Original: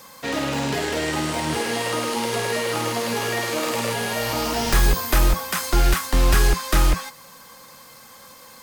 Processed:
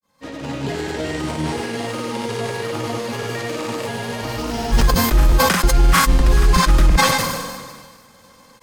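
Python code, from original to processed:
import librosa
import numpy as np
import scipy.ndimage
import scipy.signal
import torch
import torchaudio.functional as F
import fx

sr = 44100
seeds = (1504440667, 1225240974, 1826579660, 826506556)

y = fx.fade_in_head(x, sr, length_s=0.77)
y = fx.low_shelf(y, sr, hz=410.0, db=7.5)
y = fx.granulator(y, sr, seeds[0], grain_ms=100.0, per_s=20.0, spray_ms=100.0, spread_st=0)
y = fx.high_shelf(y, sr, hz=11000.0, db=-7.0)
y = fx.sustainer(y, sr, db_per_s=35.0)
y = y * 10.0 ** (-2.5 / 20.0)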